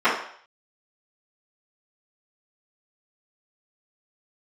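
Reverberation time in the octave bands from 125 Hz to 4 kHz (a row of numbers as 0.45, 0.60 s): 0.40, 0.45, 0.55, 0.60, 0.60, 0.60 s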